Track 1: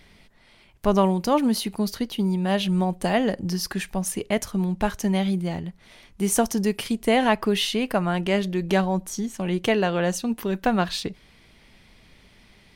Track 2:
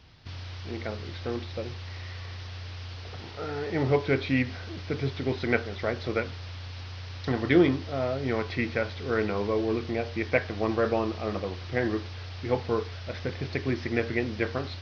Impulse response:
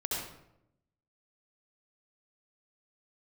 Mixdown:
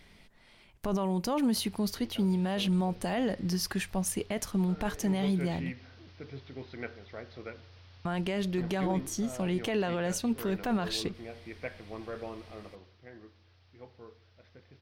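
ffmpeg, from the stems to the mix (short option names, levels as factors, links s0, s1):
-filter_complex "[0:a]volume=0.631,asplit=3[s0][s1][s2];[s0]atrim=end=5.74,asetpts=PTS-STARTPTS,afade=t=out:st=5.736:d=0.004:c=hsin[s3];[s1]atrim=start=5.74:end=8.05,asetpts=PTS-STARTPTS,volume=0[s4];[s2]atrim=start=8.05,asetpts=PTS-STARTPTS,afade=t=in:d=0.004:c=hsin[s5];[s3][s4][s5]concat=n=3:v=0:a=1[s6];[1:a]adelay=1300,volume=0.178,afade=t=out:st=12.53:d=0.44:silence=0.354813,asplit=2[s7][s8];[s8]volume=0.075[s9];[2:a]atrim=start_sample=2205[s10];[s9][s10]afir=irnorm=-1:irlink=0[s11];[s6][s7][s11]amix=inputs=3:normalize=0,alimiter=limit=0.0891:level=0:latency=1:release=18"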